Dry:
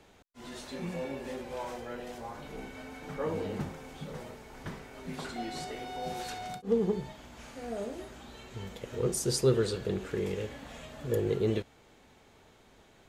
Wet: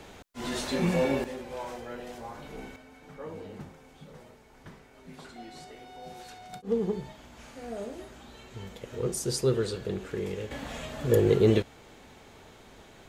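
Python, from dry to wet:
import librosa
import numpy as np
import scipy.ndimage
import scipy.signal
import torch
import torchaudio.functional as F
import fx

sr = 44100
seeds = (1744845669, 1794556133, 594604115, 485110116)

y = fx.gain(x, sr, db=fx.steps((0.0, 11.0), (1.24, 0.5), (2.76, -7.5), (6.53, -0.5), (10.51, 7.5)))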